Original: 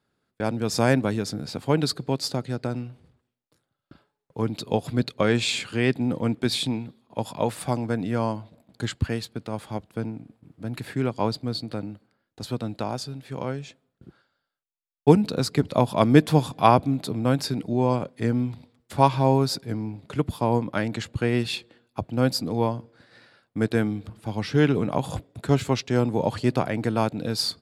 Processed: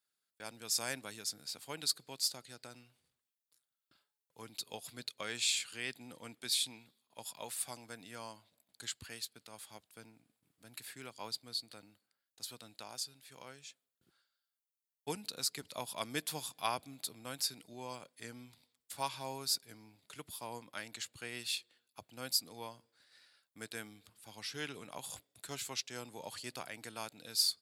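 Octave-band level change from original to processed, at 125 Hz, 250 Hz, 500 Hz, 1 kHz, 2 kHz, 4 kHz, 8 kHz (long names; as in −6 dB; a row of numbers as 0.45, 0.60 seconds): −30.0, −27.5, −23.5, −18.5, −12.0, −5.5, −1.0 decibels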